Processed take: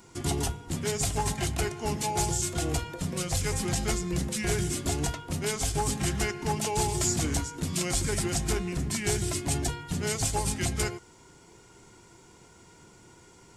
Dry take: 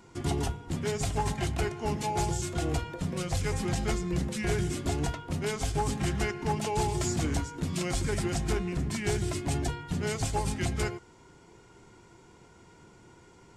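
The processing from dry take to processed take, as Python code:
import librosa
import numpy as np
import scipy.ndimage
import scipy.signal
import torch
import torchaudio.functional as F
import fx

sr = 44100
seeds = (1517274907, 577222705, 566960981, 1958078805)

y = fx.high_shelf(x, sr, hz=5000.0, db=11.5)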